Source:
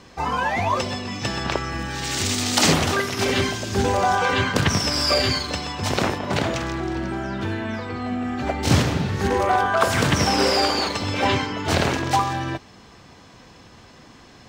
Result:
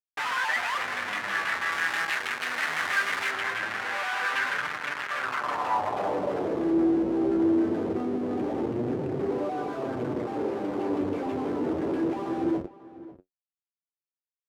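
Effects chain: tracing distortion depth 0.21 ms; compression 6:1, threshold -22 dBFS, peak gain reduction 10 dB; LFO low-pass saw down 6.2 Hz 770–3400 Hz; reverberation RT60 1.4 s, pre-delay 7 ms, DRR 11.5 dB; Schmitt trigger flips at -31 dBFS; flange 0.21 Hz, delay 6.5 ms, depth 6.5 ms, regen +52%; echo from a far wall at 93 m, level -17 dB; band-pass sweep 1.7 kHz -> 350 Hz, 5.08–6.67 s; treble shelf 4.3 kHz +7 dB, from 1.72 s +12 dB, from 3.31 s +4.5 dB; trim +8.5 dB

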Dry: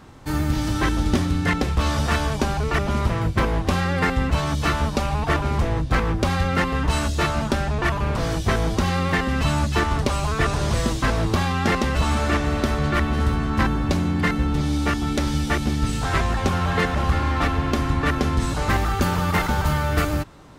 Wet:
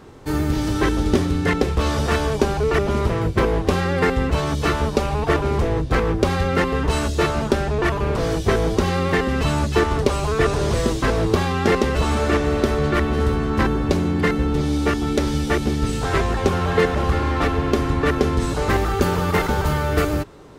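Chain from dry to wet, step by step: peaking EQ 420 Hz +10.5 dB 0.6 oct

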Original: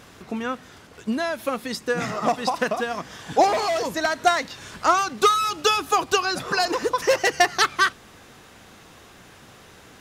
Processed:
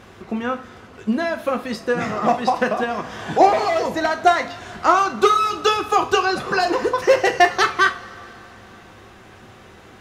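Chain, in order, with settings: treble shelf 4 kHz -12 dB; two-slope reverb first 0.32 s, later 3.2 s, from -21 dB, DRR 5 dB; 2.83–3.40 s: three bands compressed up and down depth 70%; trim +3.5 dB

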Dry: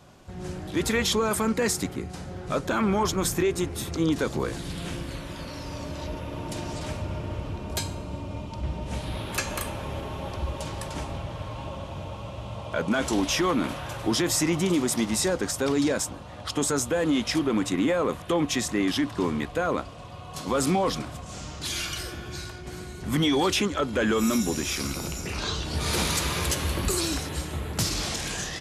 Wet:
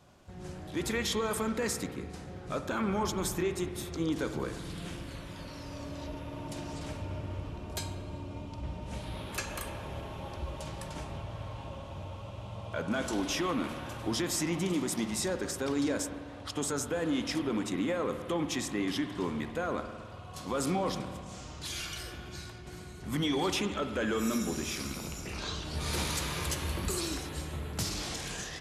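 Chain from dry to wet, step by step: spring tank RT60 1.8 s, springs 53 ms, chirp 45 ms, DRR 8 dB; trim -7.5 dB

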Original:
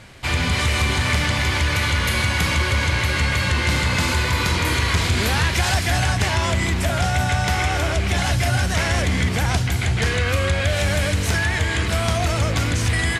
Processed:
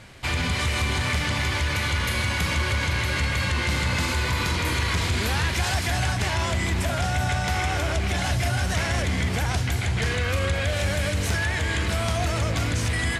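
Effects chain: peak limiter -14.5 dBFS, peak gain reduction 3 dB; on a send: echo whose repeats swap between lows and highs 418 ms, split 1.2 kHz, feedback 67%, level -12.5 dB; on the sum: trim -2.5 dB

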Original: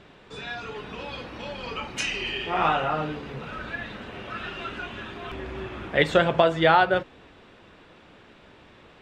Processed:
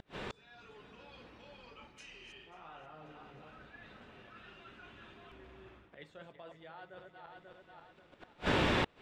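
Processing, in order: backward echo that repeats 269 ms, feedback 49%, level -10 dB; reverse; compression 5:1, threshold -37 dBFS, peak gain reduction 21 dB; reverse; inverted gate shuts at -40 dBFS, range -36 dB; level rider gain up to 14 dB; trim +7.5 dB

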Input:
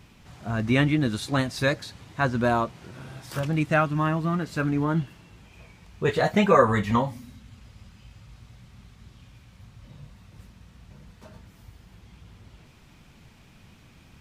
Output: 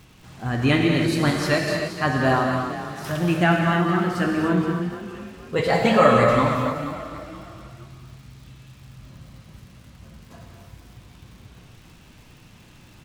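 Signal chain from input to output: speed mistake 44.1 kHz file played as 48 kHz; on a send: frequency-shifting echo 472 ms, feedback 35%, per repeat +31 Hz, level -13 dB; on the sum: gated-style reverb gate 330 ms flat, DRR 0 dB; crackle 190 per s -45 dBFS; trim +1 dB

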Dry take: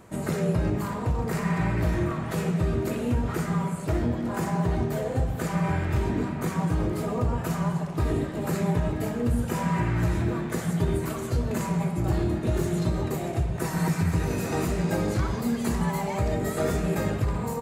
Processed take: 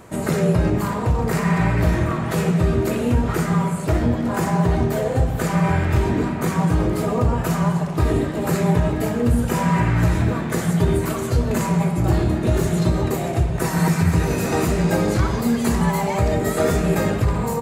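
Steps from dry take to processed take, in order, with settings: hum notches 50/100/150/200/250/300/350 Hz; trim +7.5 dB

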